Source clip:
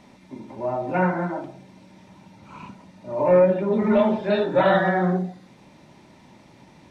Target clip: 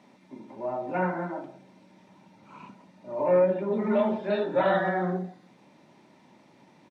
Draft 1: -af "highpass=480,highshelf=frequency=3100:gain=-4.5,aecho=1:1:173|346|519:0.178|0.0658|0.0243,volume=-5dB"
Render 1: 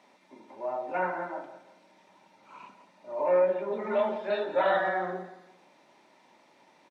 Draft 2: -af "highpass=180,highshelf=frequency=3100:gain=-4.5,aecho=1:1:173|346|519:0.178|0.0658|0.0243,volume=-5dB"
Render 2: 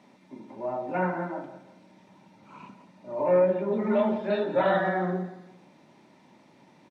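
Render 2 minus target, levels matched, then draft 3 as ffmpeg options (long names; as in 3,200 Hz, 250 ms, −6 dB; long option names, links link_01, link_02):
echo-to-direct +11.5 dB
-af "highpass=180,highshelf=frequency=3100:gain=-4.5,aecho=1:1:173|346:0.0473|0.0175,volume=-5dB"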